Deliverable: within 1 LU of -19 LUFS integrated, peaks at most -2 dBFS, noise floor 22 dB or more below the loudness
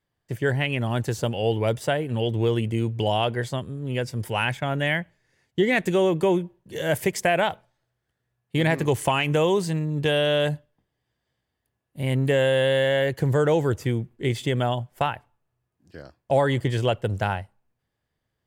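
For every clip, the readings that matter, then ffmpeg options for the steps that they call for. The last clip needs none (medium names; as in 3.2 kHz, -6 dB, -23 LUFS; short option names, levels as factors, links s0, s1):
loudness -24.0 LUFS; peak level -9.0 dBFS; loudness target -19.0 LUFS
-> -af "volume=1.78"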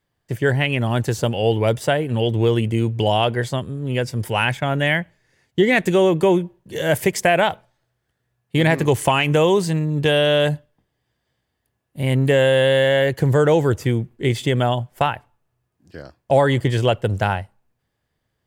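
loudness -19.0 LUFS; peak level -4.0 dBFS; noise floor -75 dBFS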